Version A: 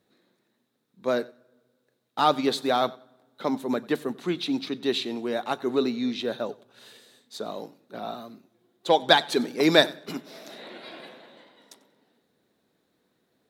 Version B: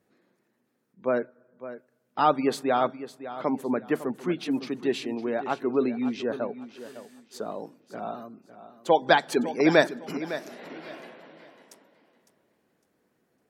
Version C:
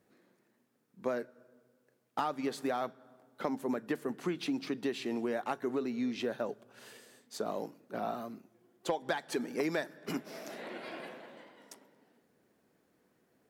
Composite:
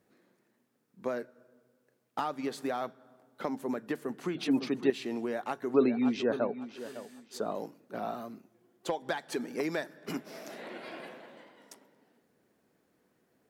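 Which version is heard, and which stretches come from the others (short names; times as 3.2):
C
4.35–4.9 from B
5.74–7.55 from B
not used: A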